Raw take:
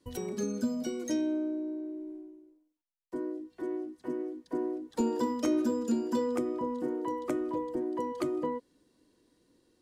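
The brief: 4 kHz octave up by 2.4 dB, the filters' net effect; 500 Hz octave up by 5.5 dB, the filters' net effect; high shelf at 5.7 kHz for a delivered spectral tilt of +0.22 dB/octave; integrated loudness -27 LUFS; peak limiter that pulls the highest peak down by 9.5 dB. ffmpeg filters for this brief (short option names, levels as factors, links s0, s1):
-af "equalizer=f=500:t=o:g=7,equalizer=f=4000:t=o:g=4.5,highshelf=f=5700:g=-3,volume=2,alimiter=limit=0.126:level=0:latency=1"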